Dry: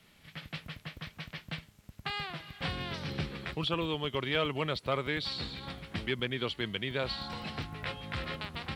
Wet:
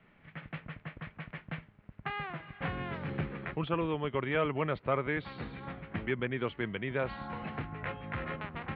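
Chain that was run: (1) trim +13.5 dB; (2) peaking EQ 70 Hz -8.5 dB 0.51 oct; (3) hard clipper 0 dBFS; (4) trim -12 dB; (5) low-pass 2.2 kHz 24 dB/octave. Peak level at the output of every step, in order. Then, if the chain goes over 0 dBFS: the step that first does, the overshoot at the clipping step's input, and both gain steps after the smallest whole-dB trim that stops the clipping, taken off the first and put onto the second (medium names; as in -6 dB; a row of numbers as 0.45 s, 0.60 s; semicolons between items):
-3.5 dBFS, -3.5 dBFS, -3.5 dBFS, -15.5 dBFS, -16.5 dBFS; nothing clips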